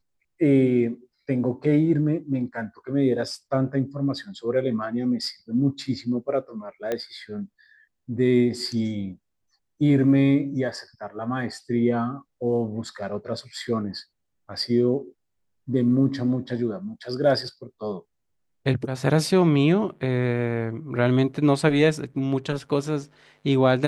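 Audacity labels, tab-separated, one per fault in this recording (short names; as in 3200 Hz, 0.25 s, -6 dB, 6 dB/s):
6.920000	6.920000	pop -14 dBFS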